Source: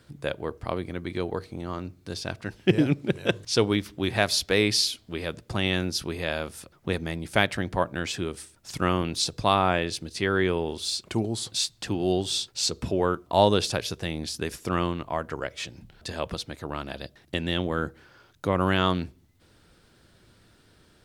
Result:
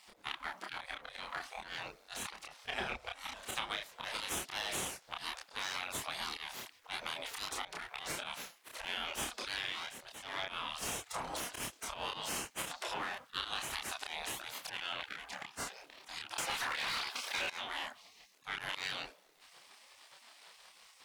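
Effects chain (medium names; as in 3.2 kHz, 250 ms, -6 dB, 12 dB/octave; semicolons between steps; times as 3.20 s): partial rectifier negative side -7 dB; 9.80–10.53 s: level held to a coarse grid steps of 15 dB; spectral gate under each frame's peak -20 dB weak; slow attack 153 ms; chorus voices 2, 1.2 Hz, delay 29 ms, depth 3 ms; 16.38–17.50 s: overdrive pedal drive 33 dB, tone 6.9 kHz, clips at -32 dBFS; treble shelf 6.2 kHz -7.5 dB; compression 6:1, threshold -51 dBFS, peak gain reduction 12.5 dB; trim +15.5 dB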